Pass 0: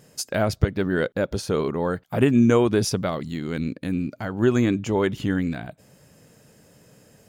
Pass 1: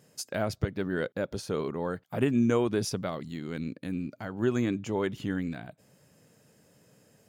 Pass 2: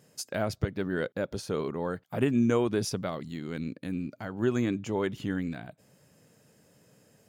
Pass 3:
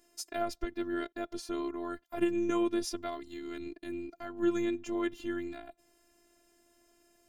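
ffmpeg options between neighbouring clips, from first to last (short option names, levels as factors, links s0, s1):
-af "highpass=86,volume=0.422"
-af anull
-af "afftfilt=real='hypot(re,im)*cos(PI*b)':imag='0':win_size=512:overlap=0.75"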